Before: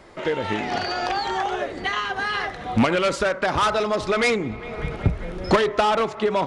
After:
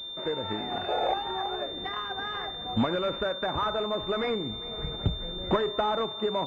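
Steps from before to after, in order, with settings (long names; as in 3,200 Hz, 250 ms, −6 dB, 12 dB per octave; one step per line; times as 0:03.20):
sound drawn into the spectrogram noise, 0:00.88–0:01.14, 420–890 Hz −21 dBFS
switching amplifier with a slow clock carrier 3,600 Hz
level −7 dB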